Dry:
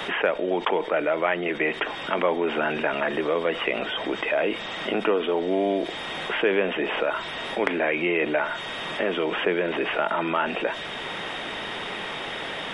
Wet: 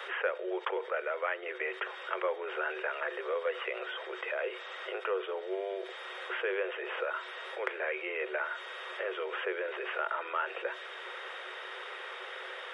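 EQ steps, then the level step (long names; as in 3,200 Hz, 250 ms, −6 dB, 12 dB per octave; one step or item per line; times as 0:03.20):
Chebyshev high-pass with heavy ripple 360 Hz, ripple 9 dB
−5.5 dB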